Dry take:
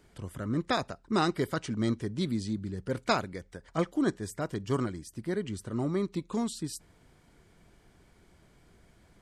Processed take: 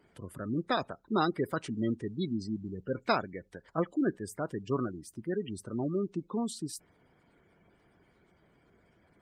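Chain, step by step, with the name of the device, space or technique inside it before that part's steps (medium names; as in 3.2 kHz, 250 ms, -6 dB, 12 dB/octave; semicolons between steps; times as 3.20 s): noise-suppressed video call (high-pass 170 Hz 6 dB/octave; spectral gate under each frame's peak -20 dB strong; Opus 32 kbps 48 kHz)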